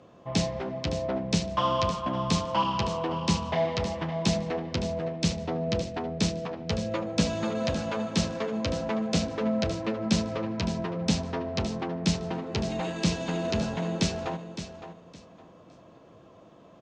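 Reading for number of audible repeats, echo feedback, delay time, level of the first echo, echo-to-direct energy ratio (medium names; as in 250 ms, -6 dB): 2, 23%, 563 ms, -11.0 dB, -11.0 dB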